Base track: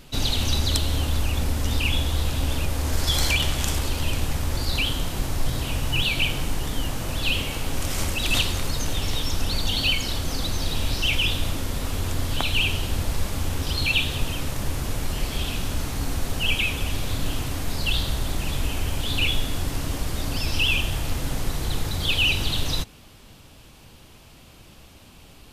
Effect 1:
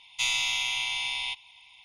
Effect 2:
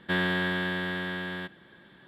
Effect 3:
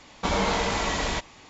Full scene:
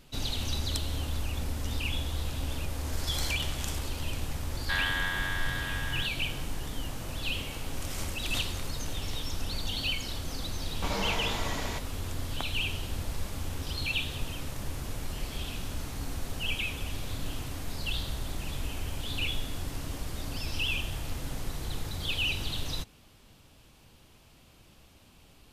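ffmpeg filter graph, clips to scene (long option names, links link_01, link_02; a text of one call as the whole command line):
ffmpeg -i bed.wav -i cue0.wav -i cue1.wav -i cue2.wav -filter_complex "[0:a]volume=-9dB[link_01];[2:a]highpass=frequency=810:width=0.5412,highpass=frequency=810:width=1.3066,atrim=end=2.07,asetpts=PTS-STARTPTS,volume=-1dB,afade=type=in:duration=0.004:curve=hsin,afade=type=out:start_time=2.066:duration=0.004:curve=hsin,adelay=4600[link_02];[3:a]atrim=end=1.49,asetpts=PTS-STARTPTS,volume=-8.5dB,afade=type=in:duration=0.004:curve=hsin,afade=type=out:start_time=1.486:duration=0.004:curve=hsin,adelay=10590[link_03];[link_01][link_02][link_03]amix=inputs=3:normalize=0" out.wav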